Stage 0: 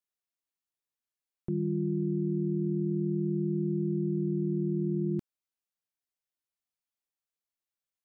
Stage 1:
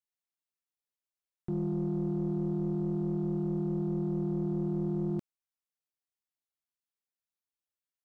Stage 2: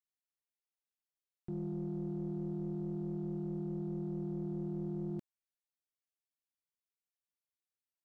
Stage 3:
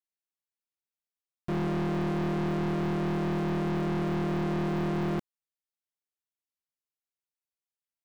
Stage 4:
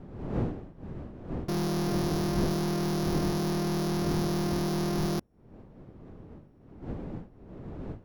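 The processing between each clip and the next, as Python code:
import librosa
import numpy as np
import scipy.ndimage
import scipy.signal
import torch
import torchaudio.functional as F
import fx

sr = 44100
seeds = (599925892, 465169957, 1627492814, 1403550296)

y1 = fx.leveller(x, sr, passes=1)
y1 = y1 * 10.0 ** (-3.5 / 20.0)
y2 = fx.peak_eq(y1, sr, hz=1100.0, db=-5.5, octaves=0.42)
y2 = y2 * 10.0 ** (-7.0 / 20.0)
y3 = fx.leveller(y2, sr, passes=5)
y3 = y3 * 10.0 ** (5.0 / 20.0)
y4 = np.r_[np.sort(y3[:len(y3) // 8 * 8].reshape(-1, 8), axis=1).ravel(), y3[len(y3) // 8 * 8:]]
y4 = fx.dmg_wind(y4, sr, seeds[0], corner_hz=270.0, level_db=-38.0)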